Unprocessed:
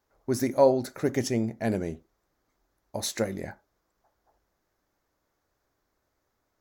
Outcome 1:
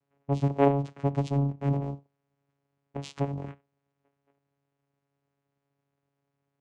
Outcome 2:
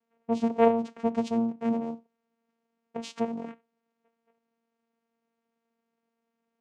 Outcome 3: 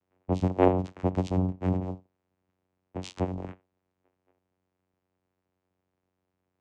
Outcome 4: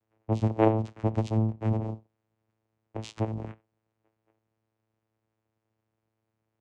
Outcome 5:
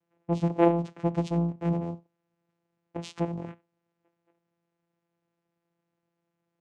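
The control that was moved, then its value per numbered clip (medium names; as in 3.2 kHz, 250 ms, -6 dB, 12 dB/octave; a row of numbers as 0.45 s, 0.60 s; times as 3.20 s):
vocoder, frequency: 140 Hz, 230 Hz, 92 Hz, 110 Hz, 170 Hz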